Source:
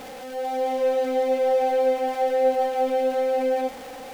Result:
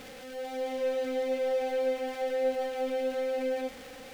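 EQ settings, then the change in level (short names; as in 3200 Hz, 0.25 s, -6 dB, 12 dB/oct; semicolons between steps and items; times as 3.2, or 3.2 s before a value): bell 310 Hz -3.5 dB 1.4 oct; bell 820 Hz -11 dB 1 oct; high shelf 5800 Hz -5 dB; -2.0 dB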